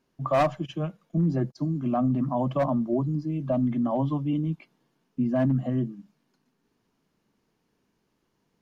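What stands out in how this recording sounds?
background noise floor −74 dBFS
spectral slope −5.0 dB per octave

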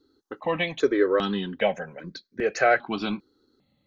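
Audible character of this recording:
notches that jump at a steady rate 2.5 Hz 620–2,800 Hz

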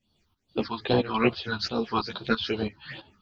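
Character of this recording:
phaser sweep stages 6, 2.4 Hz, lowest notch 510–2,100 Hz
tremolo saw up 3 Hz, depth 80%
a shimmering, thickened sound

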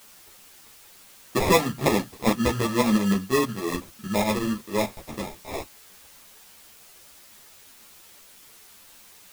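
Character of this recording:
aliases and images of a low sample rate 1,500 Hz, jitter 0%
tremolo saw up 6.4 Hz, depth 60%
a quantiser's noise floor 8 bits, dither triangular
a shimmering, thickened sound

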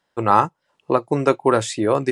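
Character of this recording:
background noise floor −73 dBFS
spectral slope −5.5 dB per octave

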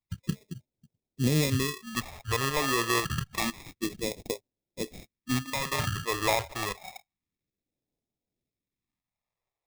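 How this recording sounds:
aliases and images of a low sample rate 1,500 Hz, jitter 0%
phaser sweep stages 2, 0.28 Hz, lowest notch 200–1,300 Hz
tremolo saw up 2 Hz, depth 40%

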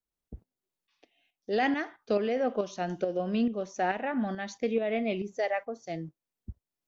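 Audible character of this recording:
tremolo saw up 2.3 Hz, depth 55%

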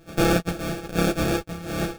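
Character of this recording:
a buzz of ramps at a fixed pitch in blocks of 256 samples
tremolo saw up 2.7 Hz, depth 40%
aliases and images of a low sample rate 1,000 Hz, jitter 0%
a shimmering, thickened sound

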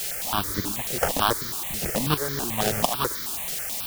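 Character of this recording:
aliases and images of a low sample rate 2,300 Hz, jitter 20%
tremolo saw up 1.4 Hz, depth 75%
a quantiser's noise floor 6 bits, dither triangular
notches that jump at a steady rate 9.2 Hz 280–2,700 Hz

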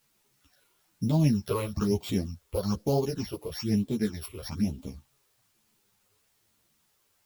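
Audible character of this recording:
a buzz of ramps at a fixed pitch in blocks of 8 samples
phaser sweep stages 8, 1.1 Hz, lowest notch 210–1,800 Hz
a quantiser's noise floor 12 bits, dither triangular
a shimmering, thickened sound

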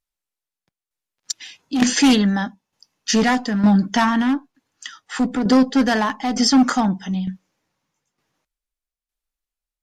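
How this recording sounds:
tremolo saw down 1.1 Hz, depth 65%
AAC

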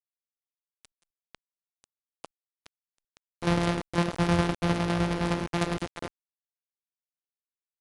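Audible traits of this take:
a buzz of ramps at a fixed pitch in blocks of 256 samples
tremolo saw down 9.8 Hz, depth 60%
a quantiser's noise floor 6 bits, dither none
IMA ADPCM

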